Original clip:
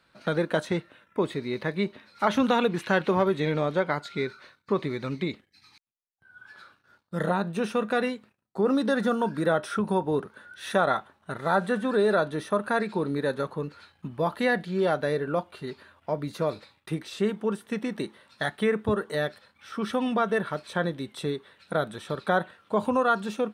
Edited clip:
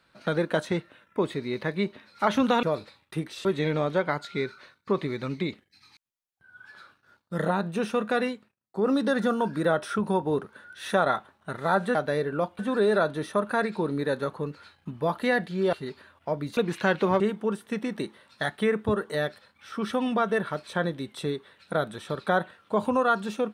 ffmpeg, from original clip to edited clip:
-filter_complex "[0:a]asplit=10[a][b][c][d][e][f][g][h][i][j];[a]atrim=end=2.632[k];[b]atrim=start=16.378:end=17.202[l];[c]atrim=start=3.258:end=8.4,asetpts=PTS-STARTPTS,afade=t=out:st=4.862:d=0.28:silence=0.237137[m];[d]atrim=start=8.4:end=8.41,asetpts=PTS-STARTPTS,volume=-12.5dB[n];[e]atrim=start=8.41:end=11.762,asetpts=PTS-STARTPTS,afade=t=in:d=0.28:silence=0.237137[o];[f]atrim=start=14.898:end=15.542[p];[g]atrim=start=11.758:end=14.902[q];[h]atrim=start=15.538:end=16.382[r];[i]atrim=start=2.628:end=3.262[s];[j]atrim=start=17.198[t];[k][l]acrossfade=d=0.004:c1=hsin:c2=hsin[u];[m][n][o]concat=n=3:v=0:a=1[v];[u][v]acrossfade=d=0.004:c1=hsin:c2=hsin[w];[w][p]acrossfade=d=0.004:c1=hsin:c2=hsin[x];[x][q]acrossfade=d=0.004:c1=hsin:c2=hsin[y];[y][r]acrossfade=d=0.004:c1=hsin:c2=hsin[z];[z][s]acrossfade=d=0.004:c1=hsin:c2=hsin[aa];[aa][t]acrossfade=d=0.004:c1=hsin:c2=hsin"

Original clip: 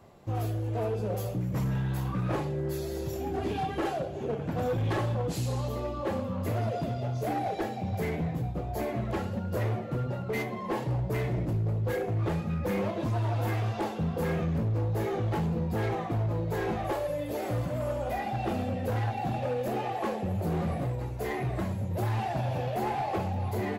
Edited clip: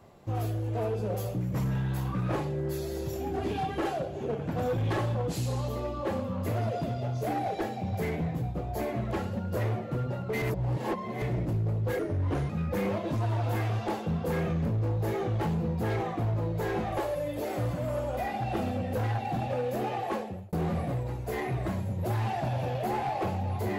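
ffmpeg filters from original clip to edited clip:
-filter_complex "[0:a]asplit=6[a][b][c][d][e][f];[a]atrim=end=10.422[g];[b]atrim=start=10.418:end=11.222,asetpts=PTS-STARTPTS,areverse[h];[c]atrim=start=11.218:end=11.994[i];[d]atrim=start=11.99:end=12.42,asetpts=PTS-STARTPTS,asetrate=37485,aresample=44100,atrim=end_sample=22309,asetpts=PTS-STARTPTS[j];[e]atrim=start=12.416:end=20.45,asetpts=PTS-STARTPTS,afade=t=out:st=7.614:d=0.42[k];[f]atrim=start=20.45,asetpts=PTS-STARTPTS,afade=t=in:d=0.004:c=hsin[l];[g][h]acrossfade=d=0.004:c1=hsin:c2=hsin[m];[m][i]acrossfade=d=0.004:c1=hsin:c2=hsin[n];[n][j]acrossfade=d=0.004:c1=hsin:c2=hsin[o];[k][l]concat=n=2:v=0:a=1[p];[o][p]acrossfade=d=0.004:c1=hsin:c2=hsin"

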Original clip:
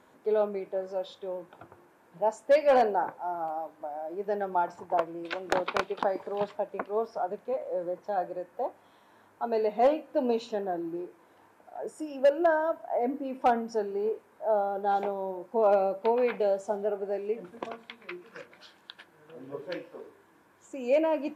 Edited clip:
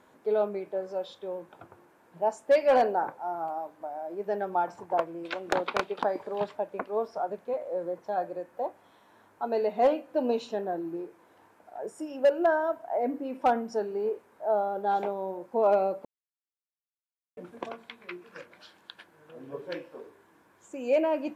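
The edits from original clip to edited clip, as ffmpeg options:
-filter_complex "[0:a]asplit=3[a][b][c];[a]atrim=end=16.05,asetpts=PTS-STARTPTS,afade=t=out:st=16.046:d=0.004:c=hsin[d];[b]atrim=start=16.05:end=17.37,asetpts=PTS-STARTPTS,volume=0[e];[c]atrim=start=17.37,asetpts=PTS-STARTPTS,afade=t=in:d=0.004:c=hsin[f];[d][e][f]concat=n=3:v=0:a=1"

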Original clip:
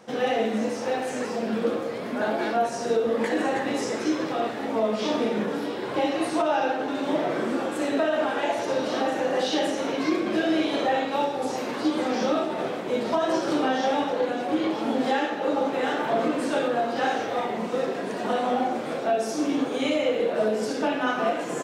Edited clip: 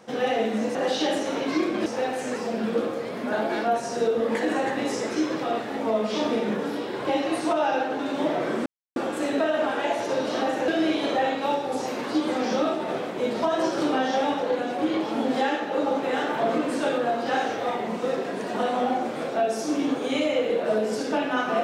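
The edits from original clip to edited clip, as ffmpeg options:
-filter_complex "[0:a]asplit=5[a][b][c][d][e];[a]atrim=end=0.752[f];[b]atrim=start=9.268:end=10.382[g];[c]atrim=start=0.748:end=7.55,asetpts=PTS-STARTPTS,afade=t=out:st=6.798:d=0.004:c=hsin,apad=pad_dur=0.3[h];[d]atrim=start=7.55:end=9.272,asetpts=PTS-STARTPTS,afade=t=in:d=0.004:c=hsin[i];[e]atrim=start=10.378[j];[f][g]acrossfade=d=0.004:c1=hsin:c2=hsin[k];[h][i]concat=n=2:v=0:a=1[l];[k][l]acrossfade=d=0.004:c1=hsin:c2=hsin[m];[m][j]acrossfade=d=0.004:c1=hsin:c2=hsin"

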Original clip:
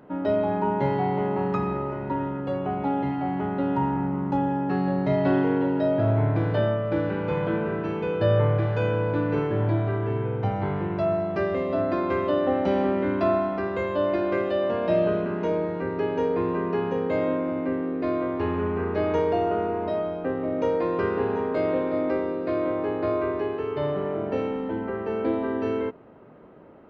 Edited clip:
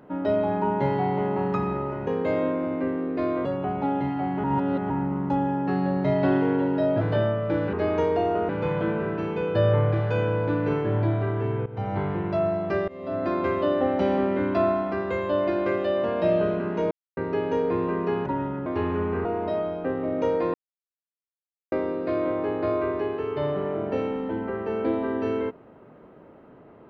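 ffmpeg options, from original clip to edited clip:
-filter_complex "[0:a]asplit=17[a][b][c][d][e][f][g][h][i][j][k][l][m][n][o][p][q];[a]atrim=end=2.072[r];[b]atrim=start=16.918:end=18.302[s];[c]atrim=start=2.468:end=3.462[t];[d]atrim=start=3.458:end=3.922,asetpts=PTS-STARTPTS,areverse[u];[e]atrim=start=3.918:end=6.032[v];[f]atrim=start=6.428:end=7.152[w];[g]atrim=start=18.888:end=19.652[x];[h]atrim=start=7.148:end=10.32,asetpts=PTS-STARTPTS,afade=t=out:st=3.168:d=0.004:c=hsin:silence=0.158489[y];[i]atrim=start=10.32:end=11.54,asetpts=PTS-STARTPTS,afade=t=in:d=0.28:silence=0.158489,afade=t=out:st=1.216:d=0.004:c=hsin:silence=0.0668344[z];[j]atrim=start=11.54:end=15.57,asetpts=PTS-STARTPTS,afade=t=in:d=0.44:silence=0.0668344,afade=t=out:st=4.026:d=0.004:c=hsin[aa];[k]atrim=start=15.57:end=15.83,asetpts=PTS-STARTPTS,volume=0[ab];[l]atrim=start=15.83:end=16.922,asetpts=PTS-STARTPTS,afade=t=in:d=0.004:c=hsin[ac];[m]atrim=start=2.068:end=2.472[ad];[n]atrim=start=18.298:end=18.892[ae];[o]atrim=start=19.648:end=20.94,asetpts=PTS-STARTPTS,afade=t=out:st=1.288:d=0.004:c=hsin[af];[p]atrim=start=20.94:end=22.12,asetpts=PTS-STARTPTS,volume=0[ag];[q]atrim=start=22.12,asetpts=PTS-STARTPTS,afade=t=in:d=0.004:c=hsin[ah];[r][s]acrossfade=d=0.004:c1=hsin:c2=hsin[ai];[ai][t]acrossfade=d=0.004:c1=hsin:c2=hsin[aj];[aj][u]acrossfade=d=0.004:c1=hsin:c2=hsin[ak];[ak][v]acrossfade=d=0.004:c1=hsin:c2=hsin[al];[al][w]acrossfade=d=0.004:c1=hsin:c2=hsin[am];[am][x]acrossfade=d=0.004:c1=hsin:c2=hsin[an];[y][z][aa][ab][ac]concat=n=5:v=0:a=1[ao];[an][ao]acrossfade=d=0.004:c1=hsin:c2=hsin[ap];[ap][ad]acrossfade=d=0.004:c1=hsin:c2=hsin[aq];[aq][ae]acrossfade=d=0.004:c1=hsin:c2=hsin[ar];[af][ag][ah]concat=n=3:v=0:a=1[as];[ar][as]acrossfade=d=0.004:c1=hsin:c2=hsin"

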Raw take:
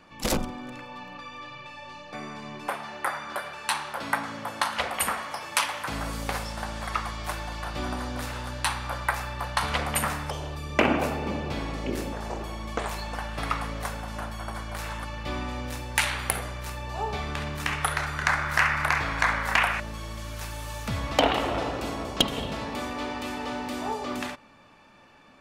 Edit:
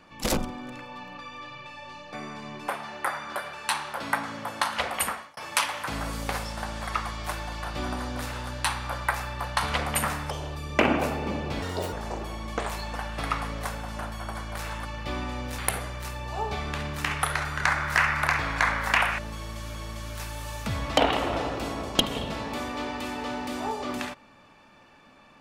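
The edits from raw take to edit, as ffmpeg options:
-filter_complex "[0:a]asplit=6[a][b][c][d][e][f];[a]atrim=end=5.37,asetpts=PTS-STARTPTS,afade=t=out:st=5:d=0.37[g];[b]atrim=start=5.37:end=11.624,asetpts=PTS-STARTPTS,afade=t=in:d=0.004:c=hsin[h];[c]atrim=start=11.62:end=12.12,asetpts=PTS-STARTPTS,asetrate=72324,aresample=44100,atrim=end_sample=13445,asetpts=PTS-STARTPTS[i];[d]atrim=start=12.116:end=15.782[j];[e]atrim=start=16.198:end=20.362[k];[f]atrim=start=19.958[l];[g][h]concat=n=2:v=0:a=1[m];[m][i]acrossfade=d=0.004:c1=hsin:c2=hsin[n];[n][j]acrossfade=d=0.004:c1=hsin:c2=hsin[o];[o][k]acrossfade=d=0.004:c1=hsin:c2=hsin[p];[p][l]acrossfade=d=0.004:c1=hsin:c2=hsin"

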